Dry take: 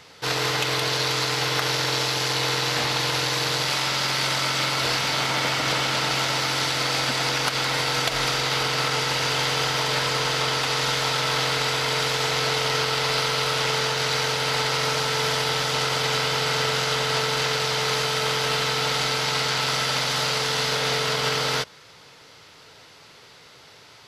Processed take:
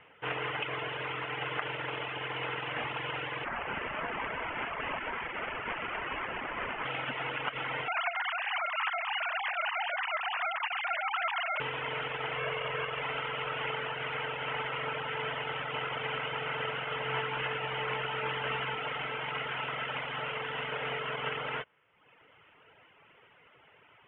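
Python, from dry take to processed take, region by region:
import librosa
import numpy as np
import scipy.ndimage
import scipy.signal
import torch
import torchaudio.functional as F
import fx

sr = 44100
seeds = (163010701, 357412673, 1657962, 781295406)

y = fx.chain(x, sr, fx.highpass(hz=1400.0, slope=12),
    fx.high_shelf(hz=9500.0, db=9.0),
    fx.resample_linear(factor=8), at=(3.44, 6.85))
y = fx.chain(y, sr, fx.sine_speech(),
    fx.highpass(hz=590.0, slope=6), at=(7.88, 11.6))
y = fx.chain(y, sr, fx.lowpass(hz=3600.0, slope=24),
    fx.comb(ms=1.8, depth=0.46), at=(12.37, 13.02))
y = fx.chain(y, sr, fx.doubler(ms=16.0, db=-6.0),
    fx.room_flutter(wall_m=7.6, rt60_s=0.2),
    fx.doppler_dist(depth_ms=0.11), at=(17.04, 18.76))
y = scipy.signal.sosfilt(scipy.signal.butter(16, 3100.0, 'lowpass', fs=sr, output='sos'), y)
y = fx.dereverb_blind(y, sr, rt60_s=0.96)
y = fx.low_shelf(y, sr, hz=330.0, db=-5.5)
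y = y * librosa.db_to_amplitude(-6.0)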